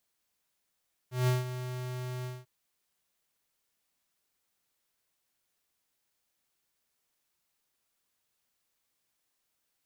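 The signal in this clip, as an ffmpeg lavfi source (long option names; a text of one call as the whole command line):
ffmpeg -f lavfi -i "aevalsrc='0.0562*(2*lt(mod(126*t,1),0.5)-1)':duration=1.344:sample_rate=44100,afade=type=in:duration=0.165,afade=type=out:start_time=0.165:duration=0.164:silence=0.251,afade=type=out:start_time=1.14:duration=0.204" out.wav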